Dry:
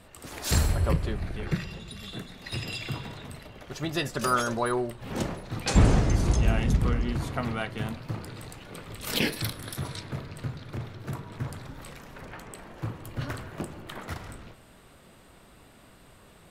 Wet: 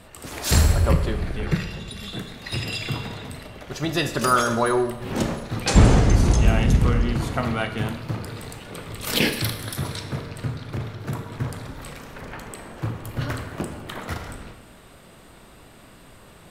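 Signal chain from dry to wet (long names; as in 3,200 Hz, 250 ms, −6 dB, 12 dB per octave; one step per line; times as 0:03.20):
four-comb reverb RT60 0.93 s, combs from 27 ms, DRR 8.5 dB
level +5.5 dB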